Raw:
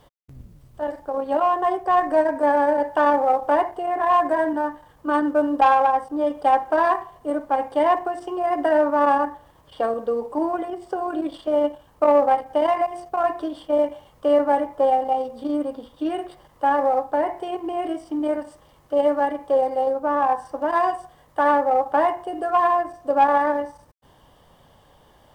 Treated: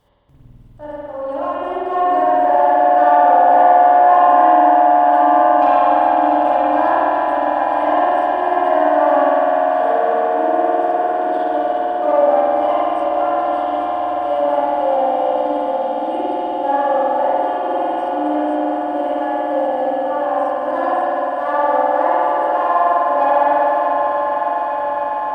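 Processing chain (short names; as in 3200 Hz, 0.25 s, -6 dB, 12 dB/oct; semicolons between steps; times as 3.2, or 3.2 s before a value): regenerating reverse delay 0.428 s, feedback 80%, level -10.5 dB; swelling echo 0.138 s, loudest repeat 8, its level -13 dB; spring tank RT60 3.2 s, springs 50 ms, chirp 20 ms, DRR -9 dB; gain -8 dB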